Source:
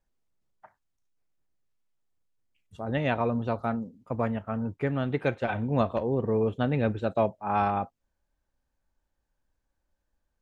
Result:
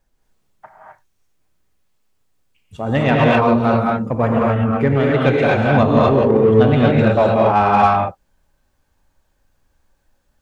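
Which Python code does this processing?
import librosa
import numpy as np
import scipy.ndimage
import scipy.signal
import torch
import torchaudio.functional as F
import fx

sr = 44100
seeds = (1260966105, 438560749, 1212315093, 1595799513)

p1 = fx.rev_gated(x, sr, seeds[0], gate_ms=280, shape='rising', drr_db=-3.5)
p2 = 10.0 ** (-25.5 / 20.0) * np.tanh(p1 / 10.0 ** (-25.5 / 20.0))
p3 = p1 + (p2 * librosa.db_to_amplitude(-4.5))
y = p3 * librosa.db_to_amplitude(7.0)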